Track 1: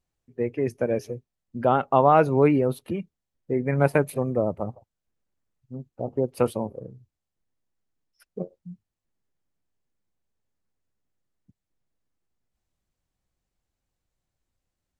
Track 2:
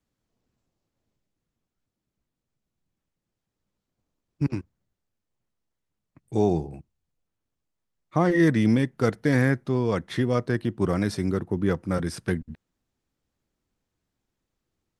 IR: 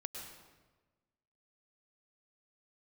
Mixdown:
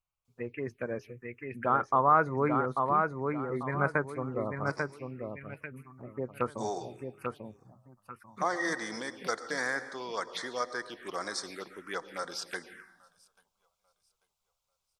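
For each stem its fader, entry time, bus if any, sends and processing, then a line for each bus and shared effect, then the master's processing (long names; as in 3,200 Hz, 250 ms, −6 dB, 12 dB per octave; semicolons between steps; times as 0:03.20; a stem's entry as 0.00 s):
−10.5 dB, 0.00 s, no send, echo send −4 dB, flat-topped bell 1,700 Hz +14.5 dB
+0.5 dB, 0.25 s, send −3 dB, echo send −23 dB, high-pass filter 1,100 Hz 12 dB per octave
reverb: on, RT60 1.3 s, pre-delay 97 ms
echo: repeating echo 842 ms, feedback 31%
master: phaser swept by the level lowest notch 300 Hz, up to 2,700 Hz, full sweep at −30 dBFS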